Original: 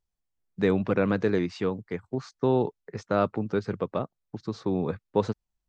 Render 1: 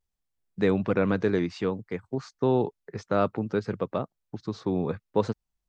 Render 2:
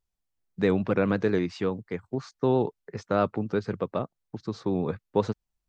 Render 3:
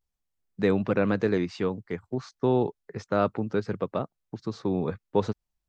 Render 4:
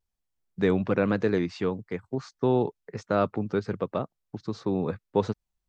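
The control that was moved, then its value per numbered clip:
pitch vibrato, speed: 0.61, 7.9, 0.32, 1.1 Hertz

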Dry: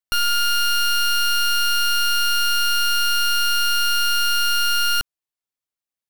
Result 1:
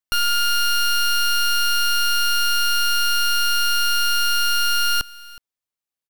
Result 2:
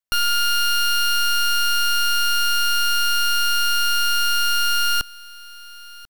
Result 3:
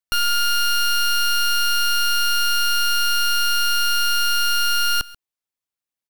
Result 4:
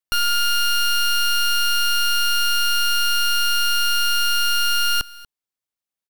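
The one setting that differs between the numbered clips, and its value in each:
single-tap delay, delay time: 369, 1,041, 136, 238 milliseconds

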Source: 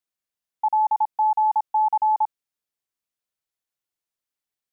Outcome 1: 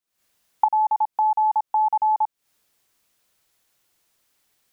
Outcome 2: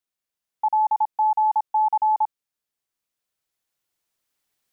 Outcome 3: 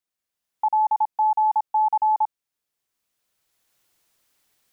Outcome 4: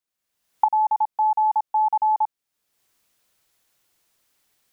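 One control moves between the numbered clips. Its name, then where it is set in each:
camcorder AGC, rising by: 88, 5.1, 13, 34 dB per second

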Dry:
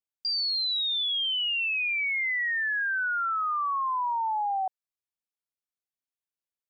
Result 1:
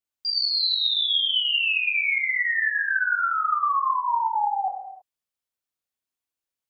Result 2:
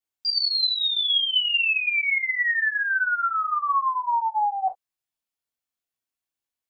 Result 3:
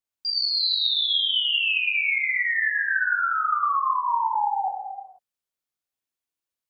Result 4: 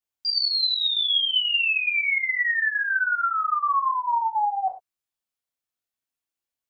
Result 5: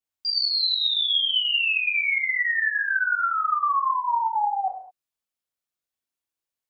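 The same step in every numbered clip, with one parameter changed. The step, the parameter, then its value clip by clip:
reverb whose tail is shaped and stops, gate: 350, 80, 520, 130, 240 milliseconds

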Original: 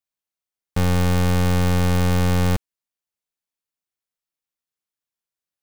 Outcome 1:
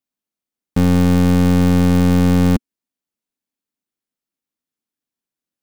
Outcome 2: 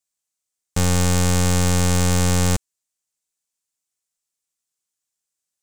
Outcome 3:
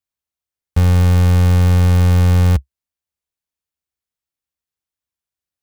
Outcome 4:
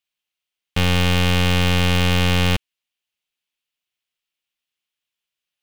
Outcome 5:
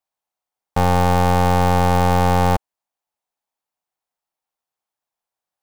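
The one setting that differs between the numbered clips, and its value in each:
parametric band, centre frequency: 250, 7,500, 68, 2,900, 800 Hertz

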